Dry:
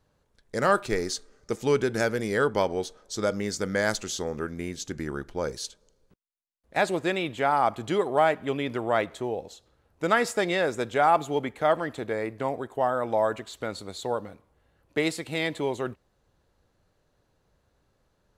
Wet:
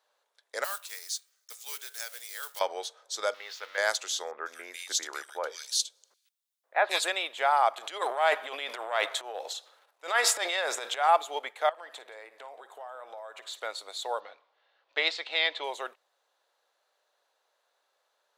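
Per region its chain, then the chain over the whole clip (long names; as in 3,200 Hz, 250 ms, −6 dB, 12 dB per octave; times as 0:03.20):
0:00.64–0:02.61: one scale factor per block 5 bits + first-order pre-emphasis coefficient 0.97 + hum removal 139.9 Hz, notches 22
0:03.34–0:03.78: spike at every zero crossing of −22 dBFS + high-pass filter 1,200 Hz 6 dB per octave + high-frequency loss of the air 290 metres
0:04.31–0:07.08: high-shelf EQ 2,300 Hz +9 dB + multiband delay without the direct sound lows, highs 150 ms, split 2,100 Hz
0:07.77–0:11.09: low-shelf EQ 410 Hz −4 dB + transient designer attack −11 dB, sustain +11 dB
0:11.69–0:13.60: downward compressor 12 to 1, threshold −36 dBFS + multi-tap delay 55/176 ms −16/−18.5 dB
0:14.20–0:15.64: low-pass filter 4,700 Hz 24 dB per octave + high-shelf EQ 2,400 Hz +6 dB
whole clip: high-pass filter 590 Hz 24 dB per octave; parametric band 3,600 Hz +5 dB 0.34 octaves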